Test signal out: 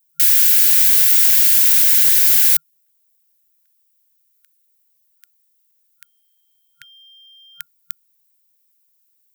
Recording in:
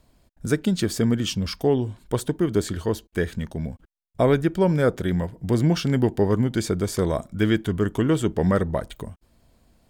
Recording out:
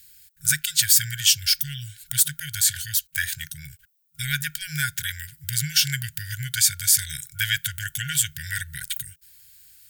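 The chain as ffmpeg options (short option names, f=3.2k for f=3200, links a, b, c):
-af "aemphasis=mode=production:type=riaa,acontrast=48,afftfilt=real='re*(1-between(b*sr/4096,160,1400))':imag='im*(1-between(b*sr/4096,160,1400))':win_size=4096:overlap=0.75,volume=-1dB"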